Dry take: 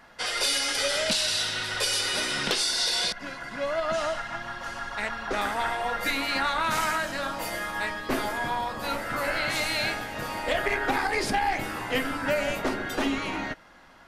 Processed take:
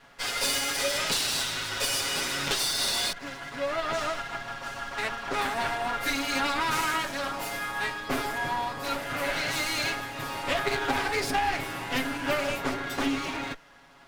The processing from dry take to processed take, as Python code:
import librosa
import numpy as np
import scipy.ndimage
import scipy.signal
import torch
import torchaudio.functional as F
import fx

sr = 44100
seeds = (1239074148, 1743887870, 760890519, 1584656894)

y = fx.lower_of_two(x, sr, delay_ms=7.2)